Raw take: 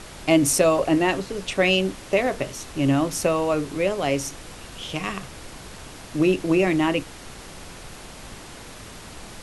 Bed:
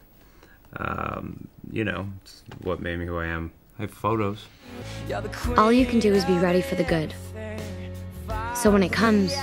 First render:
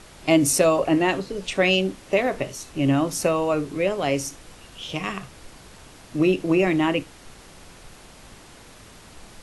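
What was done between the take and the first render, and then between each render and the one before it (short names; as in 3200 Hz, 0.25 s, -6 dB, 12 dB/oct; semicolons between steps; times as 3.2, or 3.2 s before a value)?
noise print and reduce 6 dB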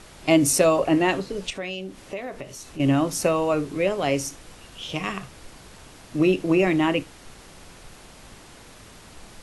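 1.5–2.8 compressor 2:1, threshold -38 dBFS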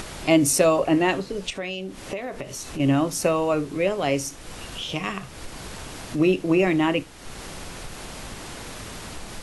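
upward compressor, threshold -26 dBFS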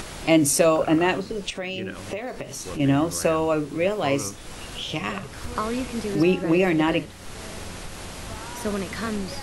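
add bed -9.5 dB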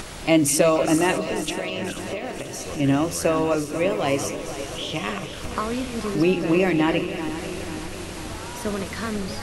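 regenerating reverse delay 0.243 s, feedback 76%, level -11 dB; delay with a stepping band-pass 0.199 s, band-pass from 3100 Hz, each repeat 0.7 oct, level -10 dB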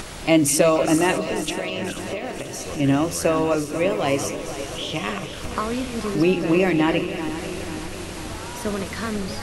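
gain +1 dB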